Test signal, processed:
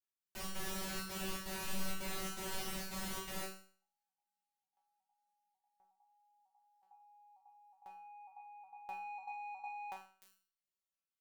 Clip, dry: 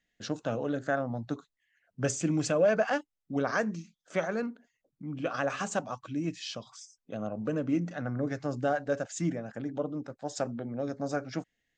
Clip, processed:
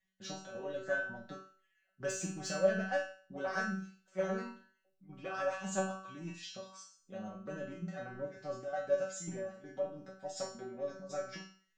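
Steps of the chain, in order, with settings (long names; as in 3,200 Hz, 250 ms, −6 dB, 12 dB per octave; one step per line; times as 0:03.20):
gate pattern "x.xxx.xxxx" 165 BPM −12 dB
in parallel at −5.5 dB: soft clipping −30 dBFS
on the sum: tuned comb filter 190 Hz, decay 0.46 s, harmonics all, mix 100%
flutter between parallel walls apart 8 metres, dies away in 0.34 s
level +6.5 dB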